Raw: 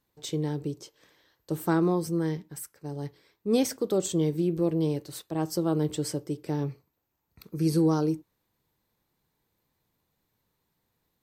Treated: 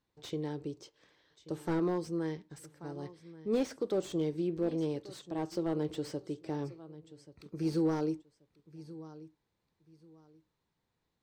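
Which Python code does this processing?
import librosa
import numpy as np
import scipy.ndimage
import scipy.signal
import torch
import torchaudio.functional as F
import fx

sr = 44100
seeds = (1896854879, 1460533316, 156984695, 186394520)

p1 = scipy.signal.sosfilt(scipy.signal.butter(2, 6000.0, 'lowpass', fs=sr, output='sos'), x)
p2 = p1 + fx.echo_feedback(p1, sr, ms=1133, feedback_pct=24, wet_db=-19.0, dry=0)
p3 = fx.dynamic_eq(p2, sr, hz=150.0, q=1.1, threshold_db=-41.0, ratio=4.0, max_db=-6)
p4 = fx.slew_limit(p3, sr, full_power_hz=44.0)
y = p4 * librosa.db_to_amplitude(-4.5)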